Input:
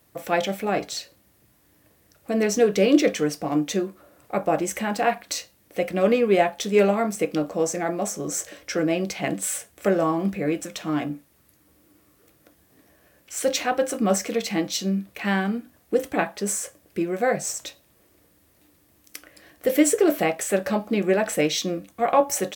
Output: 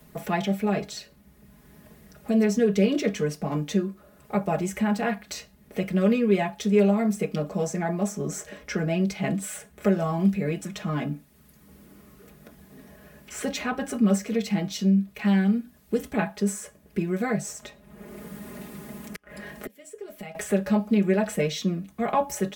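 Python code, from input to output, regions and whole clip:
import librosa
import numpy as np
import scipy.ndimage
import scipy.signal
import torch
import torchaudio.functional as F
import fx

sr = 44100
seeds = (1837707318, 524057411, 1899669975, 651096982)

y = fx.chain(x, sr, fx.comb(ms=4.9, depth=0.35),
    fx.gate_flip(shuts_db=-19.0, range_db=-25),
    fx.band_squash(depth_pct=100), at=(17.62, 20.35))
y = fx.bass_treble(y, sr, bass_db=11, treble_db=-2)
y = y + 0.92 * np.pad(y, (int(4.8 * sr / 1000.0), 0))[:len(y)]
y = fx.band_squash(y, sr, depth_pct=40)
y = y * 10.0 ** (-7.5 / 20.0)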